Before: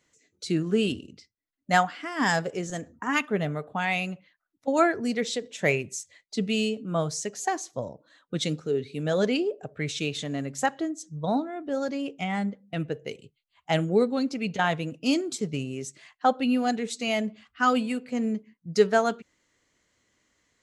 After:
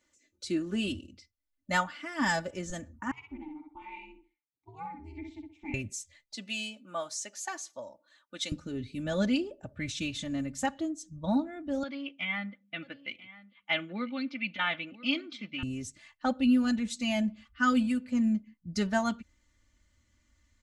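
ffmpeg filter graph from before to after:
ffmpeg -i in.wav -filter_complex "[0:a]asettb=1/sr,asplit=3[link_01][link_02][link_03];[link_01]atrim=end=3.114[link_04];[link_02]atrim=start=3.11:end=5.74,asetpts=PTS-STARTPTS,afade=type=in:duration=0.004:curve=qsin,afade=type=out:start_time=2.626:duration=0.004:curve=qsin,asplit=2[link_05][link_06];[link_06]adelay=63,lowpass=frequency=4500:poles=1,volume=-4dB,asplit=2[link_07][link_08];[link_08]adelay=63,lowpass=frequency=4500:poles=1,volume=0.24,asplit=2[link_09][link_10];[link_10]adelay=63,lowpass=frequency=4500:poles=1,volume=0.24[link_11];[link_05][link_07][link_09][link_11]amix=inputs=4:normalize=0,atrim=end_sample=115983,aeval=exprs='val(0)*sin(2*PI*160*n/s)':channel_layout=same,asplit=3[link_12][link_13][link_14];[link_12]bandpass=frequency=300:width_type=q:width=8,volume=0dB[link_15];[link_13]bandpass=frequency=870:width_type=q:width=8,volume=-6dB[link_16];[link_14]bandpass=frequency=2240:width_type=q:width=8,volume=-9dB[link_17];[link_15][link_16][link_17]amix=inputs=3:normalize=0[link_18];[link_03]atrim=start=5.736[link_19];[link_04][link_18]acrossfade=duration=0.004:curve1=hsin:curve2=qsin[link_20];[link_20][link_19]acrossfade=duration=0.004:curve1=qsin:curve2=hsin,asettb=1/sr,asplit=3[link_21][link_22][link_23];[link_21]atrim=end=6.354[link_24];[link_22]atrim=start=6.35:end=8.52,asetpts=PTS-STARTPTS,afade=type=in:duration=0.004:curve=qsin,afade=type=out:start_time=2.166:duration=0.004:curve=qsin,deesser=0.35,highpass=560[link_25];[link_23]atrim=start=8.516[link_26];[link_24][link_25]acrossfade=duration=0.004:curve1=hsin:curve2=qsin[link_27];[link_27][link_26]acrossfade=duration=0.004:curve1=qsin:curve2=hsin,asettb=1/sr,asplit=3[link_28][link_29][link_30];[link_28]atrim=end=11.834[link_31];[link_29]atrim=start=11.83:end=15.63,asetpts=PTS-STARTPTS,afade=type=in:duration=0.004:curve=qsin,afade=type=out:start_time=3.796:duration=0.004:curve=qsin,highpass=370,equalizer=frequency=410:width_type=q:width=4:gain=-9,equalizer=frequency=580:width_type=q:width=4:gain=-5,equalizer=frequency=870:width_type=q:width=4:gain=-5,equalizer=frequency=1300:width_type=q:width=4:gain=4,equalizer=frequency=2200:width_type=q:width=4:gain=10,equalizer=frequency=3300:width_type=q:width=4:gain=7,lowpass=frequency=3800:width=0.5412,lowpass=frequency=3800:width=1.3066,aecho=1:1:992:0.126,atrim=end_sample=167580[link_32];[link_30]atrim=start=15.626[link_33];[link_31][link_32]acrossfade=duration=0.004:curve1=hsin:curve2=qsin[link_34];[link_34][link_33]acrossfade=duration=0.004:curve1=qsin:curve2=hsin,aecho=1:1:3.4:0.82,asubboost=boost=10.5:cutoff=120,volume=-6dB" out.wav

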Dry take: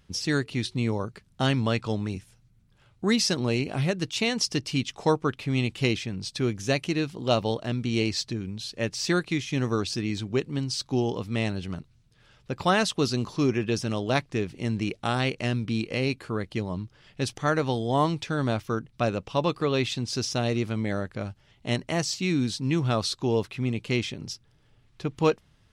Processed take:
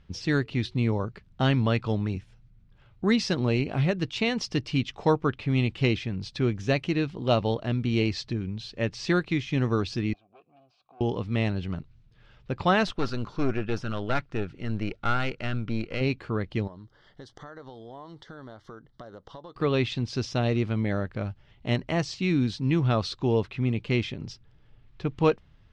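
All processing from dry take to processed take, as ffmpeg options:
ffmpeg -i in.wav -filter_complex "[0:a]asettb=1/sr,asplit=3[link_01][link_02][link_03];[link_01]atrim=end=10.134[link_04];[link_02]atrim=start=10.13:end=11.01,asetpts=PTS-STARTPTS,afade=type=in:duration=0.004:curve=qsin,afade=type=out:start_time=0.876:duration=0.004:curve=qsin,asoftclip=type=hard:threshold=-29dB,acompressor=threshold=-40dB:ratio=4:attack=3.2:release=140:knee=1:detection=peak,asplit=3[link_05][link_06][link_07];[link_05]bandpass=frequency=730:width_type=q:width=8,volume=0dB[link_08];[link_06]bandpass=frequency=1090:width_type=q:width=8,volume=-6dB[link_09];[link_07]bandpass=frequency=2440:width_type=q:width=8,volume=-9dB[link_10];[link_08][link_09][link_10]amix=inputs=3:normalize=0[link_11];[link_03]atrim=start=11.006[link_12];[link_04][link_11]acrossfade=duration=0.004:curve1=hsin:curve2=qsin[link_13];[link_13][link_12]acrossfade=duration=0.004:curve1=qsin:curve2=hsin,asettb=1/sr,asplit=3[link_14][link_15][link_16];[link_14]atrim=end=12.874[link_17];[link_15]atrim=start=12.87:end=16.01,asetpts=PTS-STARTPTS,afade=type=in:duration=0.004:curve=qsin,afade=type=out:start_time=3.136:duration=0.004:curve=qsin,equalizer=frequency=1400:width=6.9:gain=14.5,aeval=exprs='(tanh(10*val(0)+0.7)-tanh(0.7))/10':channel_layout=same[link_18];[link_16]atrim=start=16.006[link_19];[link_17][link_18]acrossfade=duration=0.004:curve1=hsin:curve2=qsin[link_20];[link_20][link_19]acrossfade=duration=0.004:curve1=qsin:curve2=hsin,asettb=1/sr,asplit=3[link_21][link_22][link_23];[link_21]atrim=end=16.674[link_24];[link_22]atrim=start=16.67:end=19.56,asetpts=PTS-STARTPTS,afade=type=in:duration=0.004:curve=qsin,afade=type=out:start_time=2.886:duration=0.004:curve=qsin,bass=frequency=250:gain=-10,treble=frequency=4000:gain=0,acompressor=threshold=-41dB:ratio=6:attack=3.2:release=140:knee=1:detection=peak,asuperstop=centerf=2500:order=4:qfactor=2.1[link_25];[link_23]atrim=start=19.556[link_26];[link_24][link_25]acrossfade=duration=0.004:curve1=hsin:curve2=qsin[link_27];[link_27][link_26]acrossfade=duration=0.004:curve1=qsin:curve2=hsin,lowpass=3600,lowshelf=frequency=70:gain=10" out.wav

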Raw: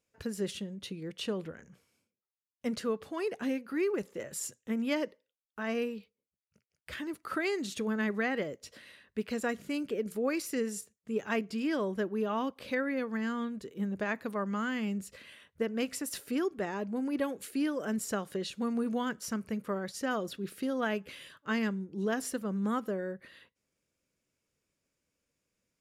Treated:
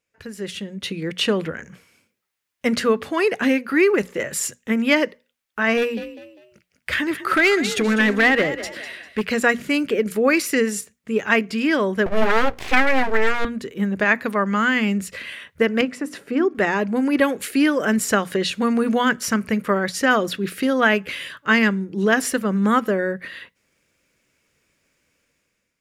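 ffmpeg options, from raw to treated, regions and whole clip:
ffmpeg -i in.wav -filter_complex "[0:a]asettb=1/sr,asplit=3[link_01][link_02][link_03];[link_01]atrim=end=5.774[link_04];[link_02]atrim=start=5.77:end=9.25,asetpts=PTS-STARTPTS,afade=type=in:duration=0.004:curve=qsin,afade=type=out:start_time=3.476:duration=0.004:curve=qsin,asoftclip=type=hard:threshold=-28dB,asplit=4[link_05][link_06][link_07][link_08];[link_06]adelay=199,afreqshift=45,volume=-13dB[link_09];[link_07]adelay=398,afreqshift=90,volume=-22.6dB[link_10];[link_08]adelay=597,afreqshift=135,volume=-32.3dB[link_11];[link_05][link_09][link_10][link_11]amix=inputs=4:normalize=0,atrim=end_sample=153468[link_12];[link_03]atrim=start=9.246[link_13];[link_04][link_12]acrossfade=duration=0.004:curve1=hsin:curve2=qsin[link_14];[link_14][link_13]acrossfade=duration=0.004:curve1=qsin:curve2=hsin,asettb=1/sr,asplit=3[link_15][link_16][link_17];[link_15]atrim=end=12.064[link_18];[link_16]atrim=start=12.06:end=13.45,asetpts=PTS-STARTPTS,afade=type=in:duration=0.004:curve=qsin,afade=type=out:start_time=1.386:duration=0.004:curve=qsin,lowshelf=frequency=290:gain=10.5,bandreject=frequency=60:width_type=h:width=6,bandreject=frequency=120:width_type=h:width=6,bandreject=frequency=180:width_type=h:width=6,bandreject=frequency=240:width_type=h:width=6,bandreject=frequency=300:width_type=h:width=6,bandreject=frequency=360:width_type=h:width=6,bandreject=frequency=420:width_type=h:width=6,aeval=exprs='abs(val(0))':channel_layout=same[link_19];[link_17]atrim=start=13.446[link_20];[link_18][link_19]acrossfade=duration=0.004:curve1=hsin:curve2=qsin[link_21];[link_21][link_20]acrossfade=duration=0.004:curve1=qsin:curve2=hsin,asettb=1/sr,asplit=3[link_22][link_23][link_24];[link_22]atrim=end=15.814[link_25];[link_23]atrim=start=15.81:end=16.55,asetpts=PTS-STARTPTS,afade=type=in:duration=0.004:curve=qsin,afade=type=out:start_time=0.736:duration=0.004:curve=qsin,highpass=150,lowpass=6600,equalizer=frequency=4700:width=0.32:gain=-13.5,bandreject=frequency=50:width_type=h:width=6,bandreject=frequency=100:width_type=h:width=6,bandreject=frequency=150:width_type=h:width=6,bandreject=frequency=200:width_type=h:width=6,bandreject=frequency=250:width_type=h:width=6,bandreject=frequency=300:width_type=h:width=6[link_26];[link_24]atrim=start=16.546[link_27];[link_25][link_26]acrossfade=duration=0.004:curve1=hsin:curve2=qsin[link_28];[link_28][link_27]acrossfade=duration=0.004:curve1=qsin:curve2=hsin,equalizer=frequency=2000:width_type=o:width=1.3:gain=7.5,bandreject=frequency=60:width_type=h:width=6,bandreject=frequency=120:width_type=h:width=6,bandreject=frequency=180:width_type=h:width=6,bandreject=frequency=240:width_type=h:width=6,dynaudnorm=framelen=200:gausssize=7:maxgain=13.5dB" out.wav

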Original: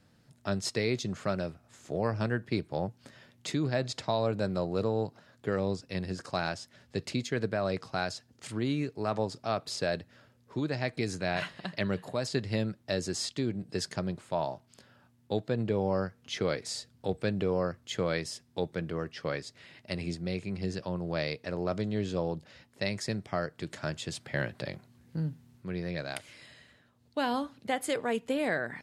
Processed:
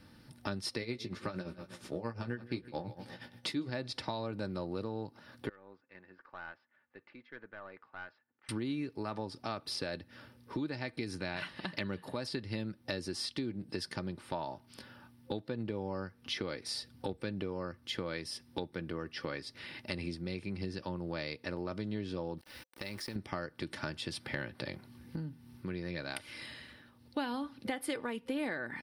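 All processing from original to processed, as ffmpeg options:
ffmpeg -i in.wav -filter_complex "[0:a]asettb=1/sr,asplit=3[link_01][link_02][link_03];[link_01]atrim=end=0.804[link_04];[link_02]atrim=start=0.8:end=3.7,asetpts=PTS-STARTPTS,afade=type=in:duration=0.004:curve=qsin,afade=type=out:start_time=2.896:duration=0.004:curve=qsin,aecho=1:1:159|318|477|636:0.15|0.0613|0.0252|0.0103,atrim=end_sample=127890,tremolo=f=8.6:d=0.78,asplit=2[link_05][link_06];[link_06]adelay=17,volume=-7dB[link_07];[link_05][link_07]amix=inputs=2:normalize=0,atrim=end_sample=127890[link_08];[link_03]atrim=start=3.696[link_09];[link_04][link_08]acrossfade=duration=0.004:curve1=hsin:curve2=qsin[link_10];[link_10][link_09]acrossfade=duration=0.004:curve1=qsin:curve2=hsin,asettb=1/sr,asplit=3[link_11][link_12][link_13];[link_11]atrim=end=5.494[link_14];[link_12]atrim=start=5.49:end=8.49,asetpts=PTS-STARTPTS,afade=type=in:duration=0.004:curve=qsin,afade=type=out:start_time=2.996:duration=0.004:curve=qsin,lowpass=frequency=1700:width=0.5412,lowpass=frequency=1700:width=1.3066,aderivative,aeval=exprs='(tanh(100*val(0)+0.4)-tanh(0.4))/100':channel_layout=same[link_15];[link_13]atrim=start=8.486[link_16];[link_14][link_15]acrossfade=duration=0.004:curve1=hsin:curve2=qsin[link_17];[link_17][link_16]acrossfade=duration=0.004:curve1=qsin:curve2=hsin,asettb=1/sr,asplit=3[link_18][link_19][link_20];[link_18]atrim=end=22.384[link_21];[link_19]atrim=start=22.38:end=23.16,asetpts=PTS-STARTPTS,afade=type=in:duration=0.004:curve=qsin,afade=type=out:start_time=0.776:duration=0.004:curve=qsin,equalizer=frequency=160:width=4.5:gain=-9.5,acompressor=threshold=-46dB:ratio=3:attack=3.2:release=140:knee=1:detection=peak,aeval=exprs='val(0)*gte(abs(val(0)),0.002)':channel_layout=same[link_22];[link_20]atrim=start=23.156[link_23];[link_21][link_22]acrossfade=duration=0.004:curve1=hsin:curve2=qsin[link_24];[link_24][link_23]acrossfade=duration=0.004:curve1=qsin:curve2=hsin,superequalizer=8b=0.501:15b=0.251,acompressor=threshold=-43dB:ratio=4,aecho=1:1:3.4:0.36,volume=6.5dB" out.wav

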